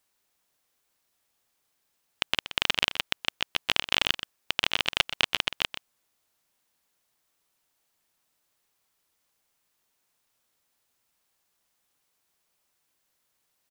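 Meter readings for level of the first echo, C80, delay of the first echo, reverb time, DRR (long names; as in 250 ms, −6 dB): −12.5 dB, no reverb audible, 125 ms, no reverb audible, no reverb audible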